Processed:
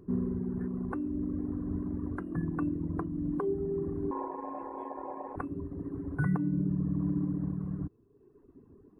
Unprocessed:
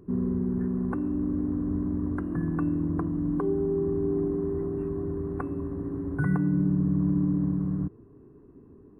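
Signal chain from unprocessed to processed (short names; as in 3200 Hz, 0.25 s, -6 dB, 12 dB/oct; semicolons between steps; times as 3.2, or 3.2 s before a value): reverb removal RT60 1.2 s; 4.11–5.36 ring modulator 670 Hz; gain -2 dB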